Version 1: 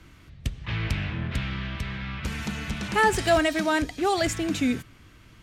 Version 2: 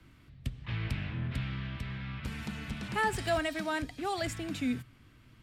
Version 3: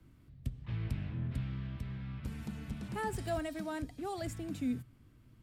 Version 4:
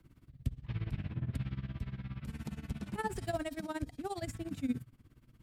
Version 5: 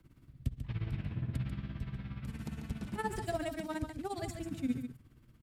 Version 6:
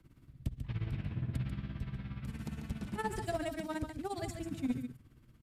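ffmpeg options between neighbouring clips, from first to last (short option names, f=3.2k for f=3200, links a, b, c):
-filter_complex "[0:a]equalizer=f=125:t=o:w=0.33:g=7,equalizer=f=250:t=o:w=0.33:g=6,equalizer=f=6.3k:t=o:w=0.33:g=-6,acrossover=split=250|450|4600[a][b][c][d];[b]acompressor=threshold=-38dB:ratio=6[e];[a][e][c][d]amix=inputs=4:normalize=0,volume=-8.5dB"
-af "equalizer=f=2.5k:w=0.37:g=-11,volume=-1.5dB"
-af "tremolo=f=17:d=0.87,volume=3.5dB"
-af "aecho=1:1:142:0.398"
-af "aeval=exprs='clip(val(0),-1,0.0398)':c=same,aresample=32000,aresample=44100"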